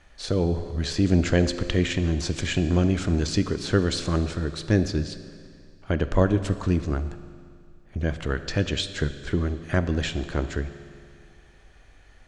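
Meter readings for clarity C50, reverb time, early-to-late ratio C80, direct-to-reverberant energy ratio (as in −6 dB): 12.0 dB, 2.2 s, 13.0 dB, 11.0 dB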